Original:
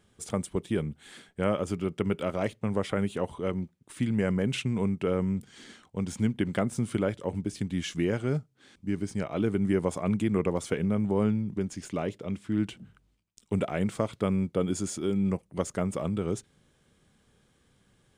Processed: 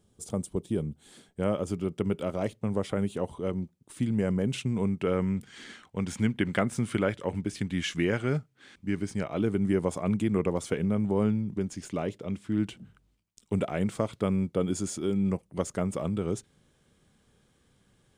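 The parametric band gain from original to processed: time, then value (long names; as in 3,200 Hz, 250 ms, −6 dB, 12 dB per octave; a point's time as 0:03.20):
parametric band 1,900 Hz 1.7 octaves
0:01.02 −13 dB
0:01.49 −6 dB
0:04.64 −6 dB
0:05.28 +6 dB
0:08.89 +6 dB
0:09.41 −1.5 dB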